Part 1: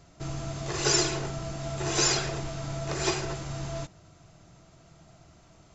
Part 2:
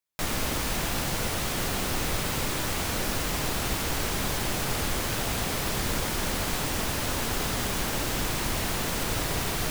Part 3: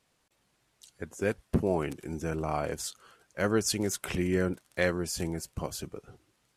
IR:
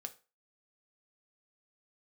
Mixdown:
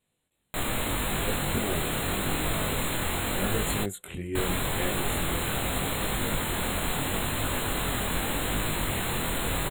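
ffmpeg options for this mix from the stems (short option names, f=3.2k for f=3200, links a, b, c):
-filter_complex "[1:a]adelay=350,volume=1dB,asplit=3[a][b][c];[a]atrim=end=3.84,asetpts=PTS-STARTPTS,afade=t=out:st=3.836:d=0.004:c=hsin[d];[b]atrim=start=3.84:end=4.35,asetpts=PTS-STARTPTS,volume=0[e];[c]atrim=start=4.35,asetpts=PTS-STARTPTS,afade=t=in:d=0.004:c=hsin[f];[d][e][f]concat=n=3:v=0:a=1,asplit=2[g][h];[h]volume=-6.5dB[i];[2:a]equalizer=f=1.1k:w=0.6:g=-7.5,volume=-1dB,asplit=2[j][k];[k]volume=-12dB[l];[3:a]atrim=start_sample=2205[m];[i][l]amix=inputs=2:normalize=0[n];[n][m]afir=irnorm=-1:irlink=0[o];[g][j][o]amix=inputs=3:normalize=0,flanger=delay=19:depth=5.5:speed=0.81,asuperstop=centerf=5400:order=20:qfactor=2"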